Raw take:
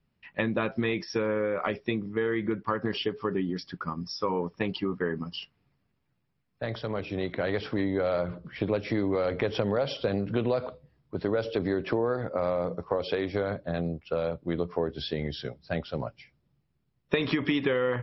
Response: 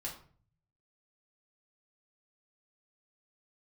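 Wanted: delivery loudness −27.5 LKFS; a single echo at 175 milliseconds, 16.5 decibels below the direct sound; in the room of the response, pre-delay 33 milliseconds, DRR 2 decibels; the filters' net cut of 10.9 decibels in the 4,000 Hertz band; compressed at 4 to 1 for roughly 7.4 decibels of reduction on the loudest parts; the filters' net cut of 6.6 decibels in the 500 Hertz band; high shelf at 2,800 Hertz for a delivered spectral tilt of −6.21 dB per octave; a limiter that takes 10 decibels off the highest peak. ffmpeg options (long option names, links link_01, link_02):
-filter_complex "[0:a]equalizer=frequency=500:width_type=o:gain=-7.5,highshelf=frequency=2800:gain=-7.5,equalizer=frequency=4000:width_type=o:gain=-9,acompressor=threshold=-34dB:ratio=4,alimiter=level_in=5.5dB:limit=-24dB:level=0:latency=1,volume=-5.5dB,aecho=1:1:175:0.15,asplit=2[link_01][link_02];[1:a]atrim=start_sample=2205,adelay=33[link_03];[link_02][link_03]afir=irnorm=-1:irlink=0,volume=-1.5dB[link_04];[link_01][link_04]amix=inputs=2:normalize=0,volume=11dB"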